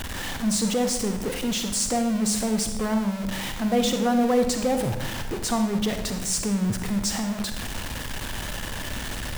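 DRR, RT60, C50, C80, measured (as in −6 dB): 6.0 dB, 0.90 s, 7.5 dB, 9.5 dB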